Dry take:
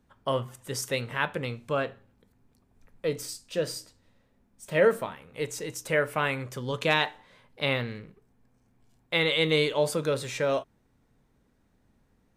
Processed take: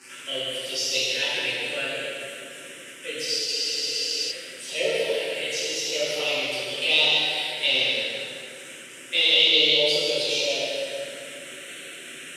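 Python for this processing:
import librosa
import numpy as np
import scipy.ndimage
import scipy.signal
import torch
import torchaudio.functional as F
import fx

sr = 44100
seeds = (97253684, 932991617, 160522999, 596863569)

y = x + 0.5 * 10.0 ** (-32.0 / 20.0) * np.sign(x)
y = np.diff(y, prepend=0.0)
y = fx.env_phaser(y, sr, low_hz=580.0, high_hz=1700.0, full_db=-32.5)
y = fx.cabinet(y, sr, low_hz=130.0, low_slope=24, high_hz=7800.0, hz=(390.0, 600.0, 1100.0, 2900.0, 6600.0), db=(9, 6, -9, 7, -6))
y = fx.notch_comb(y, sr, f0_hz=210.0)
y = y + 10.0 ** (-8.0 / 20.0) * np.pad(y, (int(156 * sr / 1000.0), 0))[:len(y)]
y = fx.rev_plate(y, sr, seeds[0], rt60_s=2.6, hf_ratio=0.65, predelay_ms=0, drr_db=-9.5)
y = fx.spec_freeze(y, sr, seeds[1], at_s=3.49, hold_s=0.82)
y = F.gain(torch.from_numpy(y), 8.5).numpy()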